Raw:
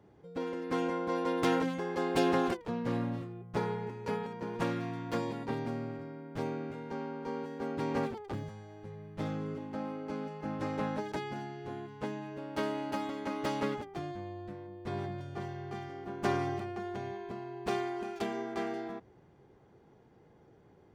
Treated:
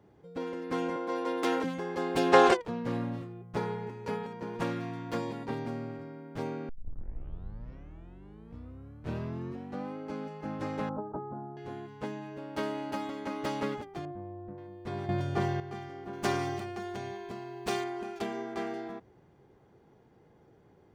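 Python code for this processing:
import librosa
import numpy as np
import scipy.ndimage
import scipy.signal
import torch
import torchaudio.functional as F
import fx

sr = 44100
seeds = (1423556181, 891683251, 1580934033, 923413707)

y = fx.highpass(x, sr, hz=250.0, slope=24, at=(0.96, 1.64))
y = fx.spec_box(y, sr, start_s=2.33, length_s=0.29, low_hz=360.0, high_hz=9200.0, gain_db=12)
y = fx.cheby1_lowpass(y, sr, hz=1300.0, order=5, at=(10.89, 11.57))
y = fx.lowpass(y, sr, hz=1000.0, slope=12, at=(14.05, 14.58))
y = fx.high_shelf(y, sr, hz=3200.0, db=10.0, at=(16.13, 17.84))
y = fx.edit(y, sr, fx.tape_start(start_s=6.69, length_s=3.28),
    fx.clip_gain(start_s=15.09, length_s=0.51, db=10.0), tone=tone)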